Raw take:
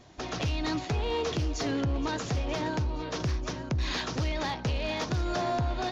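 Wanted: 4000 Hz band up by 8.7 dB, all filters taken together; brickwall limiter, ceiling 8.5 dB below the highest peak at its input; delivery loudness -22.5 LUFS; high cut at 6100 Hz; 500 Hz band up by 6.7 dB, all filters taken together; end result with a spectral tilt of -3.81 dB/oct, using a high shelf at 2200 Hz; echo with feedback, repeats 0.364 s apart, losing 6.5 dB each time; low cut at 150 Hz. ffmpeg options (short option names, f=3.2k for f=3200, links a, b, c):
-af "highpass=150,lowpass=6.1k,equalizer=f=500:t=o:g=8,highshelf=f=2.2k:g=7.5,equalizer=f=4k:t=o:g=4.5,alimiter=limit=-21.5dB:level=0:latency=1,aecho=1:1:364|728|1092|1456|1820|2184:0.473|0.222|0.105|0.0491|0.0231|0.0109,volume=7dB"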